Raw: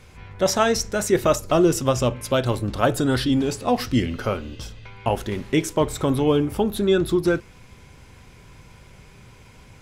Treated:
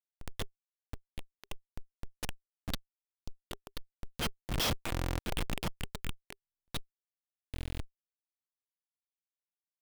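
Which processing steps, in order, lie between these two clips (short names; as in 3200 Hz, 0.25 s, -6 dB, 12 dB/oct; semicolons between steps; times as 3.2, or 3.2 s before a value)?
weighting filter D; flipped gate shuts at -14 dBFS, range -36 dB; resonant high shelf 2100 Hz +8.5 dB, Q 1.5; delay with a stepping band-pass 0.258 s, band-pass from 970 Hz, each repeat 0.7 oct, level 0 dB; reverb RT60 0.70 s, pre-delay 4 ms, DRR 9 dB; Schmitt trigger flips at -22.5 dBFS; transient shaper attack -6 dB, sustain +5 dB; notch 400 Hz, Q 12; stuck buffer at 4.91/6.4/7.52, samples 1024, times 11; gain +3.5 dB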